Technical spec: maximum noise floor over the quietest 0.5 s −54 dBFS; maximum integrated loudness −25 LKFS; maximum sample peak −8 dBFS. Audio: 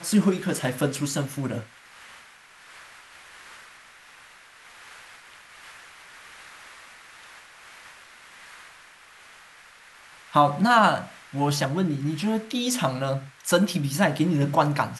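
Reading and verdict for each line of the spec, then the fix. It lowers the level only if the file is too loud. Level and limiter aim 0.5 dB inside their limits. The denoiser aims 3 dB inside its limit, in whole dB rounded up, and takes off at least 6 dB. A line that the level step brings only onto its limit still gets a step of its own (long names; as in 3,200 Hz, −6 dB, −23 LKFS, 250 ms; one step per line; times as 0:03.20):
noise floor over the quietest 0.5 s −51 dBFS: out of spec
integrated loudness −24.0 LKFS: out of spec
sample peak −6.5 dBFS: out of spec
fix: broadband denoise 6 dB, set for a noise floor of −51 dBFS
level −1.5 dB
brickwall limiter −8.5 dBFS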